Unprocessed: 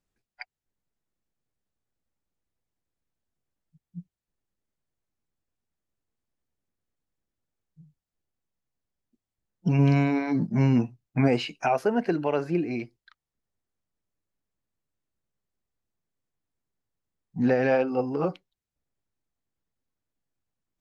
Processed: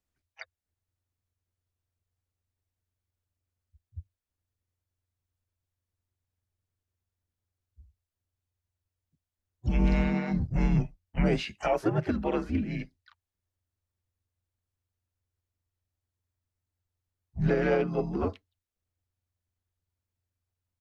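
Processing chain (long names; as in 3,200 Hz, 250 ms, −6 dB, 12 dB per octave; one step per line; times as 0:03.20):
frequency shifter −89 Hz
pitch-shifted copies added −4 semitones −11 dB, +3 semitones −16 dB, +4 semitones −11 dB
level −3.5 dB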